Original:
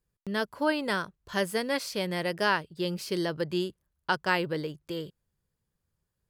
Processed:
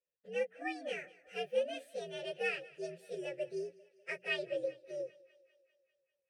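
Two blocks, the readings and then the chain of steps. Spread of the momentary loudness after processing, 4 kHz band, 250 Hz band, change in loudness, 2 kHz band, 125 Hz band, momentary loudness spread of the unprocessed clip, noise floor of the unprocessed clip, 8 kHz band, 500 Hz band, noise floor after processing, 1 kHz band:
9 LU, -11.5 dB, -17.0 dB, -9.0 dB, -10.0 dB, -21.5 dB, 10 LU, -82 dBFS, -15.0 dB, -6.0 dB, under -85 dBFS, -16.0 dB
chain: inharmonic rescaling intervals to 123%; vowel filter e; high shelf 4800 Hz +7.5 dB; notches 60/120/180/240/300/360 Hz; on a send: thinning echo 0.198 s, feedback 63%, high-pass 310 Hz, level -21.5 dB; on the sum: gain +4.5 dB

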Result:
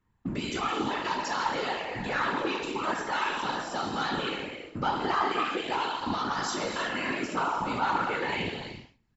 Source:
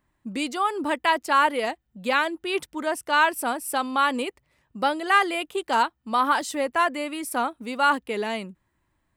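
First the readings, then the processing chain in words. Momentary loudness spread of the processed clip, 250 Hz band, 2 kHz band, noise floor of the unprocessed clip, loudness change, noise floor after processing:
5 LU, -3.5 dB, -6.0 dB, -74 dBFS, -5.5 dB, -66 dBFS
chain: spectral trails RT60 0.48 s; resonant low shelf 310 Hz +6 dB, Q 1.5; comb 2.3 ms, depth 54%; sample leveller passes 2; compressor, threshold -22 dBFS, peak gain reduction 11.5 dB; limiter -20 dBFS, peak gain reduction 6.5 dB; brick-wall FIR low-pass 7600 Hz; non-linear reverb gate 0.37 s flat, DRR 3 dB; whisperiser; LFO bell 0.39 Hz 970–5200 Hz +7 dB; gain -6 dB

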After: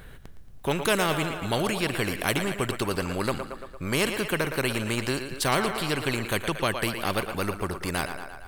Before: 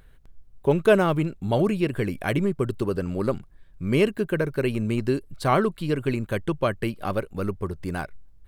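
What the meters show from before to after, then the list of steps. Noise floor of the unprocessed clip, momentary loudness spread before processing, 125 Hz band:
-51 dBFS, 9 LU, -4.5 dB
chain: thinning echo 0.114 s, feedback 56%, high-pass 340 Hz, level -12.5 dB; spectral compressor 2:1; gain -2.5 dB

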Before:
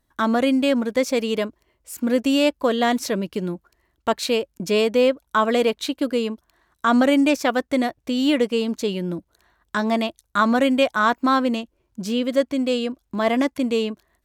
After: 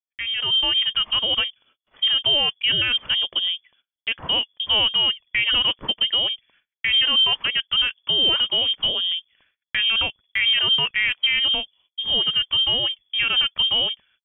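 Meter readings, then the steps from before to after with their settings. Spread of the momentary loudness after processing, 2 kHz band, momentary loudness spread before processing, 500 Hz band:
8 LU, +3.0 dB, 11 LU, -16.5 dB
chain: inverted band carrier 3400 Hz; limiter -14 dBFS, peak gain reduction 8 dB; gate -58 dBFS, range -32 dB; AGC gain up to 9 dB; gain -6.5 dB

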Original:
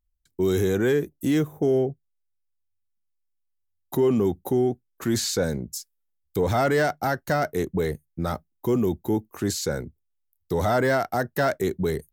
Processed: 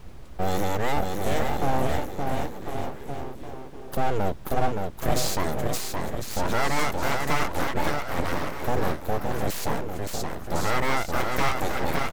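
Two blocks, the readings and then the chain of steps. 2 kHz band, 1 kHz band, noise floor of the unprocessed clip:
+1.0 dB, +3.5 dB, -75 dBFS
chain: bouncing-ball echo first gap 0.57 s, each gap 0.85×, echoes 5; added noise brown -39 dBFS; full-wave rectifier

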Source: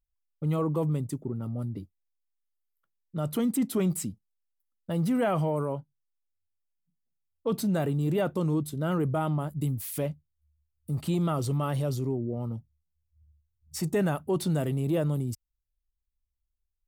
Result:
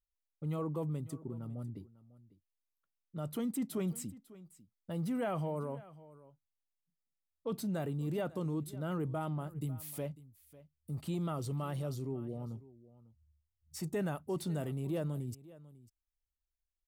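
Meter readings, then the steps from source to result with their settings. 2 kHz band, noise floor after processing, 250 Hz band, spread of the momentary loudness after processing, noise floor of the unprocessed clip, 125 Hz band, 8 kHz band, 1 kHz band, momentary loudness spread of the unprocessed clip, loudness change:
-9.0 dB, under -85 dBFS, -9.0 dB, 14 LU, -81 dBFS, -9.0 dB, -9.0 dB, -9.0 dB, 10 LU, -9.0 dB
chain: echo 0.548 s -19 dB; gain -9 dB

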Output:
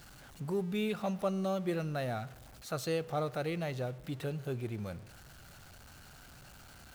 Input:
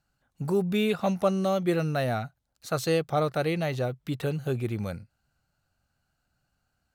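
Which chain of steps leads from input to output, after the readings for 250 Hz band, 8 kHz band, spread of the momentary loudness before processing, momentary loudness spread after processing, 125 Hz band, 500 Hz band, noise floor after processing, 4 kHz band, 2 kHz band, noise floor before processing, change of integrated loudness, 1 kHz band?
-7.5 dB, -6.0 dB, 9 LU, 20 LU, -7.5 dB, -8.0 dB, -54 dBFS, -7.5 dB, -8.0 dB, -78 dBFS, -8.0 dB, -8.0 dB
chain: zero-crossing step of -39 dBFS; spring tank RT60 1.3 s, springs 47 ms, DRR 18 dB; gain -9 dB

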